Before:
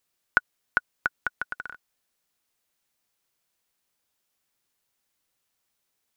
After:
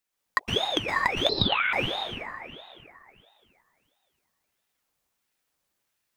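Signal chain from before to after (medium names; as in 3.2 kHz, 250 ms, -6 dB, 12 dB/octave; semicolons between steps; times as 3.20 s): high-pass 54 Hz; peaking EQ 240 Hz +6.5 dB 2.7 oct; hum notches 50/100/150/200 Hz; waveshaping leveller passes 1; peak limiter -9 dBFS, peak gain reduction 6 dB; waveshaping leveller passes 1; plate-style reverb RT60 2.7 s, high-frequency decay 0.6×, pre-delay 105 ms, DRR -5.5 dB; 1.29–1.73 s: frequency inversion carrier 3.3 kHz; ring modulator with a swept carrier 1.3 kHz, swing 75%, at 1.5 Hz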